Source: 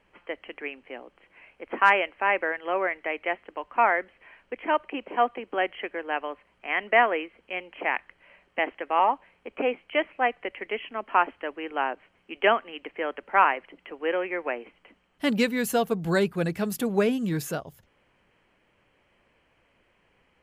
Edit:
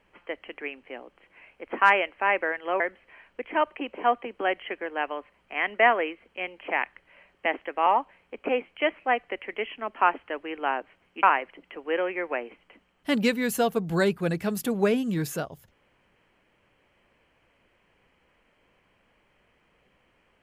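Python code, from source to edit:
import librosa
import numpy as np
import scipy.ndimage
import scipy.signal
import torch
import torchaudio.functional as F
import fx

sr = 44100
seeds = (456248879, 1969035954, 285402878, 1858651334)

y = fx.edit(x, sr, fx.cut(start_s=2.8, length_s=1.13),
    fx.cut(start_s=12.36, length_s=1.02), tone=tone)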